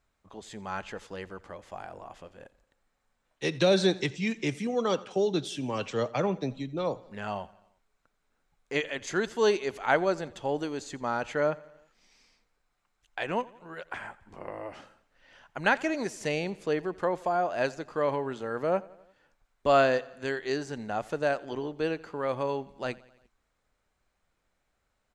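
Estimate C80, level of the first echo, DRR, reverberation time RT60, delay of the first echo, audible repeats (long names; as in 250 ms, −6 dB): no reverb audible, −22.0 dB, no reverb audible, no reverb audible, 87 ms, 3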